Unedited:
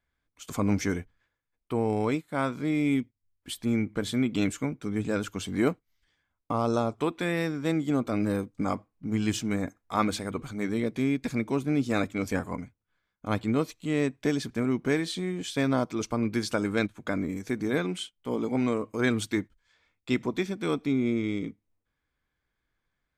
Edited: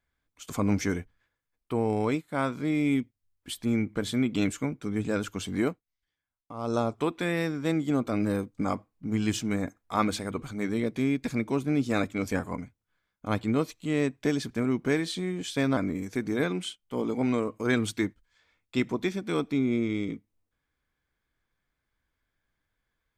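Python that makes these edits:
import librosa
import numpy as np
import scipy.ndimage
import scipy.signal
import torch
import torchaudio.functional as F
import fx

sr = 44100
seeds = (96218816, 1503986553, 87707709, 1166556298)

y = fx.edit(x, sr, fx.fade_down_up(start_s=5.57, length_s=1.22, db=-13.0, fade_s=0.24),
    fx.cut(start_s=15.77, length_s=1.34), tone=tone)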